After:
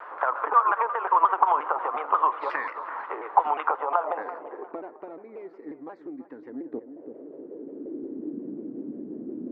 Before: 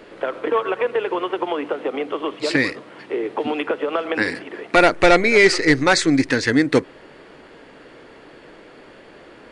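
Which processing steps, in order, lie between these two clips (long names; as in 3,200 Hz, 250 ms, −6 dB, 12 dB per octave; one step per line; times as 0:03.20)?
low-shelf EQ 140 Hz +8 dB
downward compressor 5 to 1, threshold −24 dBFS, peak gain reduction 16 dB
low-pass filter sweep 1,200 Hz → 300 Hz, 0:03.66–0:04.89
feedback echo with a low-pass in the loop 335 ms, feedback 41%, low-pass 2,300 Hz, level −13 dB
high-pass filter sweep 930 Hz → 230 Hz, 0:06.37–0:08.48
pitch modulation by a square or saw wave saw down 5.6 Hz, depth 160 cents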